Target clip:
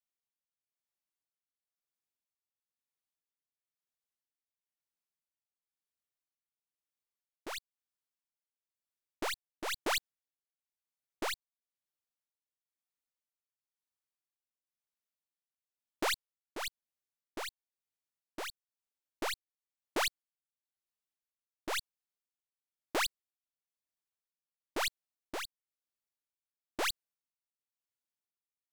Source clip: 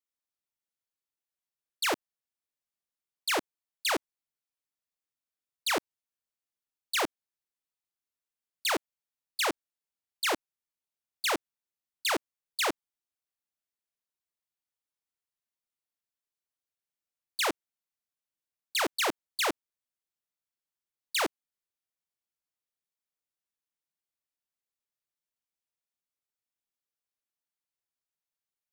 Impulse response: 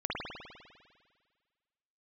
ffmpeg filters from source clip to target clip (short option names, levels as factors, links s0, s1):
-af "areverse,tremolo=f=1:d=0.7,aeval=exprs='0.0841*(cos(1*acos(clip(val(0)/0.0841,-1,1)))-cos(1*PI/2))+0.00944*(cos(6*acos(clip(val(0)/0.0841,-1,1)))-cos(6*PI/2))':c=same,volume=0.668"